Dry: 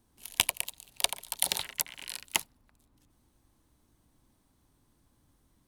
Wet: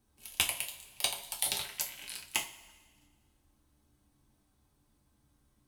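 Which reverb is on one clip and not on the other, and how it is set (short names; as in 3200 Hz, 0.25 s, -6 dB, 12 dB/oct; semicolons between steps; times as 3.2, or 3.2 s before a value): two-slope reverb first 0.28 s, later 1.5 s, from -18 dB, DRR -1 dB; gain -6 dB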